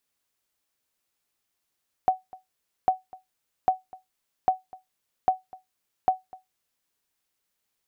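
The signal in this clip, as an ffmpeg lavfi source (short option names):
-f lavfi -i "aevalsrc='0.266*(sin(2*PI*749*mod(t,0.8))*exp(-6.91*mod(t,0.8)/0.17)+0.0708*sin(2*PI*749*max(mod(t,0.8)-0.25,0))*exp(-6.91*max(mod(t,0.8)-0.25,0)/0.17))':d=4.8:s=44100"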